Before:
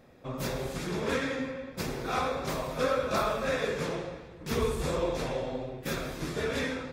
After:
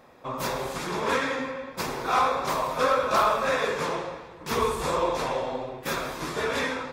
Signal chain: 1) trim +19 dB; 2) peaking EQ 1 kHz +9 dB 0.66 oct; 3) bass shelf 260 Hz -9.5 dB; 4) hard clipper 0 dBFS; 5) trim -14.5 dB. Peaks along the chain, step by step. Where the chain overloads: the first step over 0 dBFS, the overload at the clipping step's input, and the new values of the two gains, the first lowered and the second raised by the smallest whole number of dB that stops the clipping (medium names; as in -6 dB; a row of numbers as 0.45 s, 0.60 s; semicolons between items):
+3.5 dBFS, +7.5 dBFS, +6.5 dBFS, 0.0 dBFS, -14.5 dBFS; step 1, 6.5 dB; step 1 +12 dB, step 5 -7.5 dB